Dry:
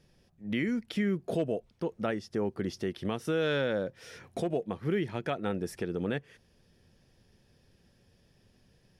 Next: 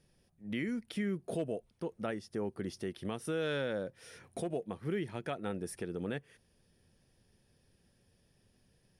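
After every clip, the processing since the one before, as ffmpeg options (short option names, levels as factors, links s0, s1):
-af "equalizer=f=9500:t=o:w=0.24:g=13.5,volume=0.531"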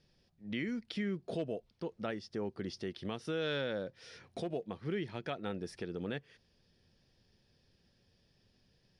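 -af "lowpass=f=4700:t=q:w=2.1,volume=0.841"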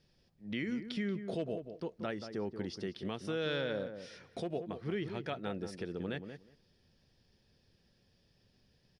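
-filter_complex "[0:a]asplit=2[s0][s1];[s1]adelay=182,lowpass=f=1200:p=1,volume=0.398,asplit=2[s2][s3];[s3]adelay=182,lowpass=f=1200:p=1,volume=0.16,asplit=2[s4][s5];[s5]adelay=182,lowpass=f=1200:p=1,volume=0.16[s6];[s0][s2][s4][s6]amix=inputs=4:normalize=0"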